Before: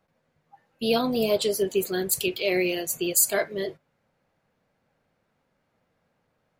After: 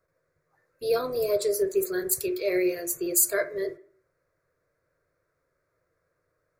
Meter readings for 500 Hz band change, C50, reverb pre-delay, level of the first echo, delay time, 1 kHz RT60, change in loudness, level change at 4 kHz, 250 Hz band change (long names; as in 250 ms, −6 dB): −0.5 dB, 16.5 dB, 6 ms, no echo audible, no echo audible, 0.50 s, −1.5 dB, −10.0 dB, −3.5 dB